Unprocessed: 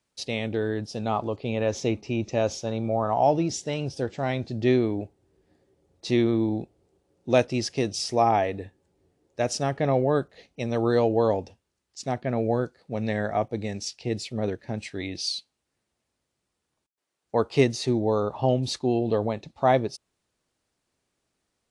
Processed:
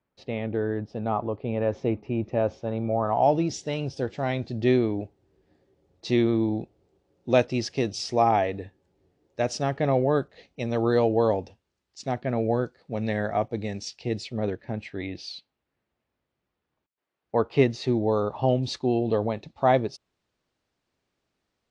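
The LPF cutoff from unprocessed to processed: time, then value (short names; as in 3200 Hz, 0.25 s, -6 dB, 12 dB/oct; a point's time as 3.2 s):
2.59 s 1700 Hz
3.09 s 3200 Hz
3.38 s 5500 Hz
14.19 s 5500 Hz
14.77 s 2800 Hz
17.53 s 2800 Hz
18.07 s 5000 Hz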